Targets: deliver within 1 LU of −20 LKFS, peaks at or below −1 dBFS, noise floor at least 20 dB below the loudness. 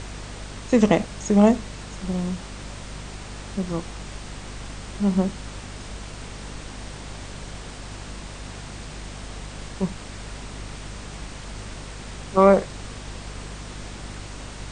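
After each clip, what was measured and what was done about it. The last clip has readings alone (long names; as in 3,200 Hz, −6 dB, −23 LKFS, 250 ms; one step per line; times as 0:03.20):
mains hum 50 Hz; hum harmonics up to 250 Hz; level of the hum −37 dBFS; background noise floor −38 dBFS; target noise floor −47 dBFS; integrated loudness −26.5 LKFS; sample peak −3.0 dBFS; target loudness −20.0 LKFS
→ mains-hum notches 50/100/150/200/250 Hz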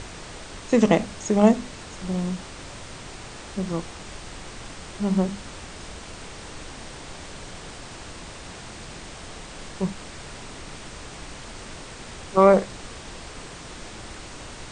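mains hum none found; background noise floor −40 dBFS; target noise floor −43 dBFS
→ noise reduction from a noise print 6 dB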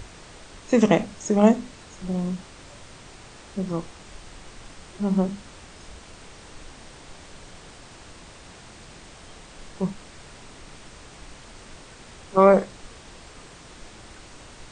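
background noise floor −46 dBFS; integrated loudness −23.0 LKFS; sample peak −2.5 dBFS; target loudness −20.0 LKFS
→ level +3 dB
brickwall limiter −1 dBFS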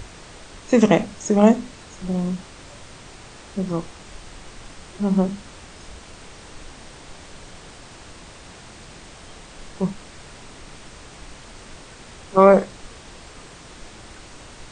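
integrated loudness −20.0 LKFS; sample peak −1.0 dBFS; background noise floor −43 dBFS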